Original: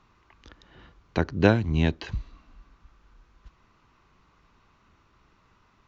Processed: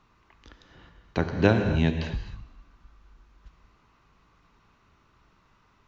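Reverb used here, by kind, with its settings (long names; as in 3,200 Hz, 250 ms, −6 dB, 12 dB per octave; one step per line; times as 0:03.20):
reverb whose tail is shaped and stops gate 290 ms flat, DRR 5.5 dB
level −1.5 dB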